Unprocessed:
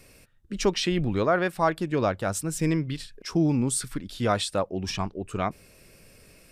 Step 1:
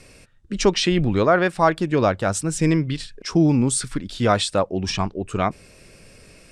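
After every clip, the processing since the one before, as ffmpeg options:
-af "lowpass=f=9400:w=0.5412,lowpass=f=9400:w=1.3066,volume=2"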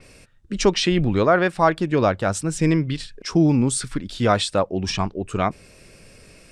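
-af "adynamicequalizer=threshold=0.01:dfrequency=5400:dqfactor=0.7:tfrequency=5400:tqfactor=0.7:attack=5:release=100:ratio=0.375:range=2:mode=cutabove:tftype=highshelf"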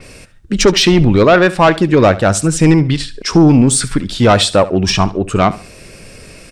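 -filter_complex "[0:a]asplit=2[s0][s1];[s1]aeval=exprs='0.668*sin(PI/2*2.82*val(0)/0.668)':c=same,volume=0.398[s2];[s0][s2]amix=inputs=2:normalize=0,aecho=1:1:70|140|210:0.141|0.0381|0.0103,volume=1.33"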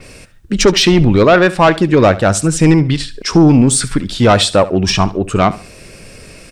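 -af "acrusher=bits=10:mix=0:aa=0.000001"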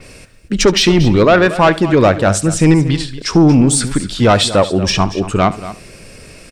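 -af "aecho=1:1:233:0.188,volume=0.891"

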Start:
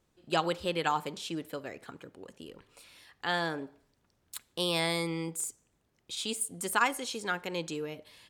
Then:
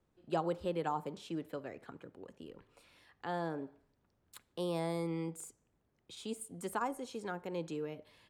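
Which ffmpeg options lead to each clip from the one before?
-filter_complex "[0:a]highshelf=f=2600:g=-12,acrossover=split=130|1100|5800[s0][s1][s2][s3];[s2]acompressor=threshold=0.00398:ratio=6[s4];[s0][s1][s4][s3]amix=inputs=4:normalize=0,volume=0.75"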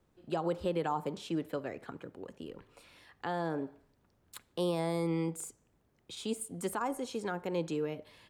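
-af "alimiter=level_in=1.68:limit=0.0631:level=0:latency=1:release=89,volume=0.596,volume=1.88"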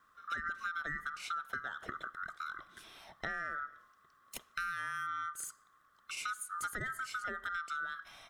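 -af "afftfilt=real='real(if(lt(b,960),b+48*(1-2*mod(floor(b/48),2)),b),0)':imag='imag(if(lt(b,960),b+48*(1-2*mod(floor(b/48),2)),b),0)':win_size=2048:overlap=0.75,acompressor=threshold=0.01:ratio=6,volume=1.58"

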